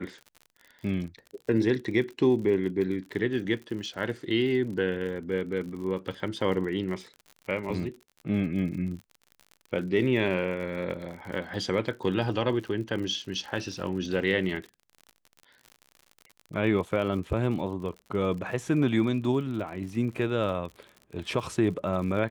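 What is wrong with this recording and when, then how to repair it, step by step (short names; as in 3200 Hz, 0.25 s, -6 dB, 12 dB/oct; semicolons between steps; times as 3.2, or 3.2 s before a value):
crackle 56/s -37 dBFS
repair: de-click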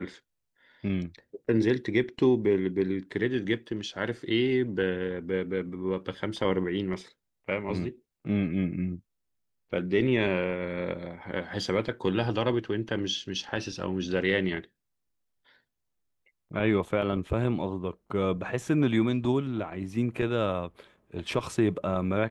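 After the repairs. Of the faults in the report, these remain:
none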